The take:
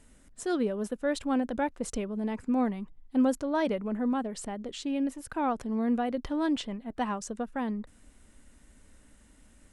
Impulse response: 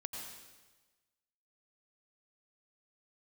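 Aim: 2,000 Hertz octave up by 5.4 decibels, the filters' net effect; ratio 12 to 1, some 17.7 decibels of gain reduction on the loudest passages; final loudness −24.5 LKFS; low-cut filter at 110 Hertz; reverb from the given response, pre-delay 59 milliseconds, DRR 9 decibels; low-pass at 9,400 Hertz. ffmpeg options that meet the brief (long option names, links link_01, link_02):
-filter_complex "[0:a]highpass=110,lowpass=9400,equalizer=frequency=2000:width_type=o:gain=7,acompressor=threshold=-39dB:ratio=12,asplit=2[link_01][link_02];[1:a]atrim=start_sample=2205,adelay=59[link_03];[link_02][link_03]afir=irnorm=-1:irlink=0,volume=-8dB[link_04];[link_01][link_04]amix=inputs=2:normalize=0,volume=18dB"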